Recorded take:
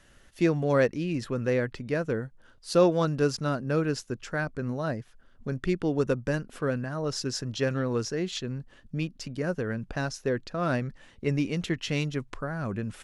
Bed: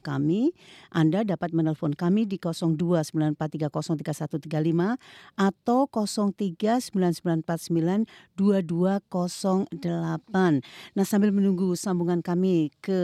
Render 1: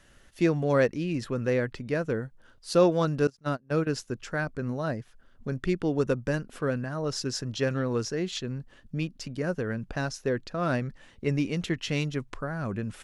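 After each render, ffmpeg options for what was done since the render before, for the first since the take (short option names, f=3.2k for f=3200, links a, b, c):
-filter_complex "[0:a]asettb=1/sr,asplit=3[a][b][c];[a]atrim=end=3.274[d];[b]atrim=start=3.27:end=3.87,asetpts=PTS-STARTPTS,afade=t=in:d=0.004:c=qsin,afade=t=out:st=0.596:d=0.004:c=qsin,agate=range=-26dB:threshold=-28dB:ratio=16:release=100:detection=peak[e];[c]atrim=start=3.866[f];[d][e]acrossfade=d=0.004:c1=hsin:c2=qsin[g];[g][f]acrossfade=d=0.004:c1=qsin:c2=hsin"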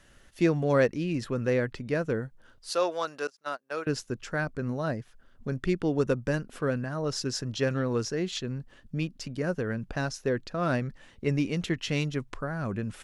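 -filter_complex "[0:a]asettb=1/sr,asplit=3[a][b][c];[a]atrim=end=2.704[d];[b]atrim=start=2.7:end=3.87,asetpts=PTS-STARTPTS,afade=t=in:d=0.004:c=qsin,afade=t=out:st=1.166:d=0.004:c=qsin,highpass=670[e];[c]atrim=start=3.866[f];[d][e]acrossfade=d=0.004:c1=hsin:c2=qsin[g];[g][f]acrossfade=d=0.004:c1=qsin:c2=hsin"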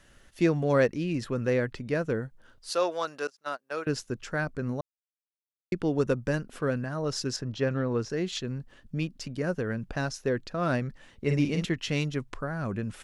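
-filter_complex "[0:a]asettb=1/sr,asplit=3[a][b][c];[a]atrim=end=7.364[d];[b]atrim=start=7.36:end=8.1,asetpts=PTS-STARTPTS,afade=t=in:d=0.004:c=qsin,afade=t=out:st=0.736:d=0.004:c=qsin,lowpass=f=2.3k:p=1[e];[c]atrim=start=8.096[f];[d][e]acrossfade=d=0.004:c1=hsin:c2=qsin[g];[g][f]acrossfade=d=0.004:c1=qsin:c2=hsin,asettb=1/sr,asplit=3[h][i][j];[h]atrim=end=11.244[k];[i]atrim=start=11.24:end=11.65,asetpts=PTS-STARTPTS,afade=t=in:d=0.004:c=qsin,afade=t=out:st=0.406:d=0.004:c=qsin,asplit=2[l][m];[m]adelay=48,volume=-4.5dB[n];[l][n]amix=inputs=2:normalize=0,atrim=end_sample=18081[o];[j]atrim=start=11.646[p];[k][o]acrossfade=d=0.004:c1=hsin:c2=qsin[q];[q][p]acrossfade=d=0.004:c1=qsin:c2=hsin,asplit=3[r][s][t];[r]atrim=end=4.81,asetpts=PTS-STARTPTS,afade=t=out:st=4.806:d=0.004:c=hsin[u];[s]atrim=start=4.81:end=5.72,asetpts=PTS-STARTPTS,volume=0[v];[t]atrim=start=5.72,asetpts=PTS-STARTPTS,afade=t=in:d=0.004:c=hsin[w];[u][v][w]concat=n=3:v=0:a=1"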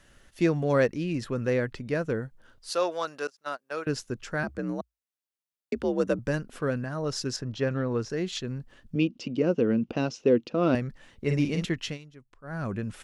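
-filter_complex "[0:a]asettb=1/sr,asplit=3[a][b][c];[a]atrim=end=4.434[d];[b]atrim=start=4.43:end=6.19,asetpts=PTS-STARTPTS,afade=t=in:d=0.004:c=qsin,afade=t=out:st=1.756:d=0.004:c=qsin,afreqshift=56[e];[c]atrim=start=6.186[f];[d][e]acrossfade=d=0.004:c1=hsin:c2=qsin[g];[g][f]acrossfade=d=0.004:c1=qsin:c2=hsin,asettb=1/sr,asplit=3[h][i][j];[h]atrim=end=8.954[k];[i]atrim=start=8.95:end=10.75,asetpts=PTS-STARTPTS,afade=t=in:d=0.004:c=qsin,afade=t=out:st=1.796:d=0.004:c=qsin,highpass=110,equalizer=f=230:t=q:w=4:g=10,equalizer=f=330:t=q:w=4:g=9,equalizer=f=480:t=q:w=4:g=8,equalizer=f=1.7k:t=q:w=4:g=-10,equalizer=f=2.8k:t=q:w=4:g=9,equalizer=f=4.4k:t=q:w=4:g=-3,lowpass=f=6k:w=0.5412,lowpass=f=6k:w=1.3066[l];[j]atrim=start=10.746[m];[k][l]acrossfade=d=0.004:c1=hsin:c2=qsin[n];[n][m]acrossfade=d=0.004:c1=qsin:c2=hsin,asplit=3[o][p][q];[o]atrim=end=11.98,asetpts=PTS-STARTPTS,afade=t=out:st=11.86:d=0.12:silence=0.112202[r];[p]atrim=start=11.98:end=12.43,asetpts=PTS-STARTPTS,volume=-19dB[s];[q]atrim=start=12.43,asetpts=PTS-STARTPTS,afade=t=in:d=0.12:silence=0.112202[t];[r][s][t]concat=n=3:v=0:a=1"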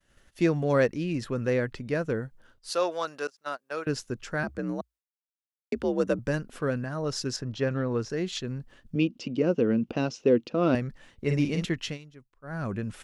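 -af "agate=range=-33dB:threshold=-51dB:ratio=3:detection=peak"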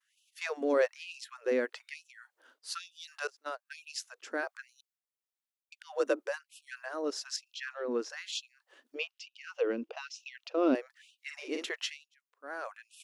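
-filter_complex "[0:a]acrossover=split=490[a][b];[a]aeval=exprs='val(0)*(1-0.5/2+0.5/2*cos(2*PI*1.4*n/s))':c=same[c];[b]aeval=exprs='val(0)*(1-0.5/2-0.5/2*cos(2*PI*1.4*n/s))':c=same[d];[c][d]amix=inputs=2:normalize=0,afftfilt=real='re*gte(b*sr/1024,230*pow(2500/230,0.5+0.5*sin(2*PI*1.1*pts/sr)))':imag='im*gte(b*sr/1024,230*pow(2500/230,0.5+0.5*sin(2*PI*1.1*pts/sr)))':win_size=1024:overlap=0.75"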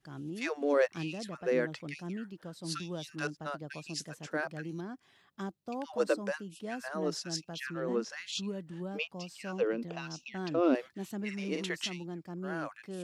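-filter_complex "[1:a]volume=-16.5dB[a];[0:a][a]amix=inputs=2:normalize=0"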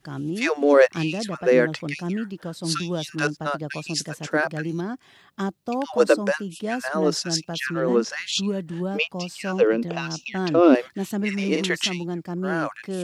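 -af "volume=12dB"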